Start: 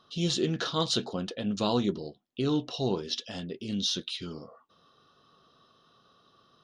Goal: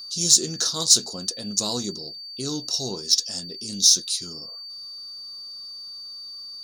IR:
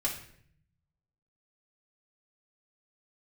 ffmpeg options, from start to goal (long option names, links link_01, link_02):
-af "acontrast=88,aexciter=amount=15.5:drive=8.6:freq=4900,aeval=exprs='val(0)+0.0562*sin(2*PI*4600*n/s)':channel_layout=same,volume=-10.5dB"